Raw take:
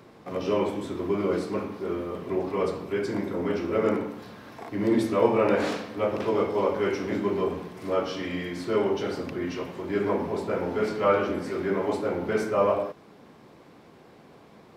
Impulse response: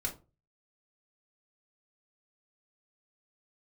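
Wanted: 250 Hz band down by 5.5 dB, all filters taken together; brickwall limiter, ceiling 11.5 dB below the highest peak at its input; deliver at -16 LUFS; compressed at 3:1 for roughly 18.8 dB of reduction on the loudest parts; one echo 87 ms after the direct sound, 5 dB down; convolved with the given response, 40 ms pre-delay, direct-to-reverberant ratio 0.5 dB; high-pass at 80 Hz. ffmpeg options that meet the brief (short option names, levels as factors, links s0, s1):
-filter_complex "[0:a]highpass=80,equalizer=f=250:t=o:g=-8,acompressor=threshold=0.00562:ratio=3,alimiter=level_in=7.08:limit=0.0631:level=0:latency=1,volume=0.141,aecho=1:1:87:0.562,asplit=2[s0][s1];[1:a]atrim=start_sample=2205,adelay=40[s2];[s1][s2]afir=irnorm=-1:irlink=0,volume=0.75[s3];[s0][s3]amix=inputs=2:normalize=0,volume=29.9"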